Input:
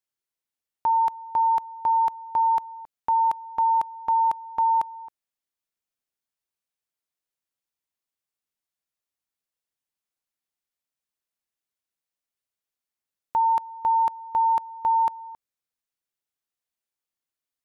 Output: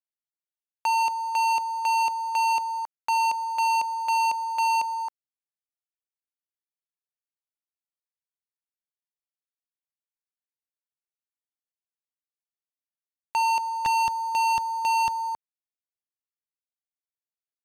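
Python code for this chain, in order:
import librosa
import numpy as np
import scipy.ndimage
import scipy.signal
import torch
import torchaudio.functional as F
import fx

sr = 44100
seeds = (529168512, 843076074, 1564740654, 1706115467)

y = fx.highpass(x, sr, hz=fx.steps((0.0, 570.0), (13.86, 83.0)), slope=12)
y = fx.leveller(y, sr, passes=5)
y = y * 10.0 ** (-8.0 / 20.0)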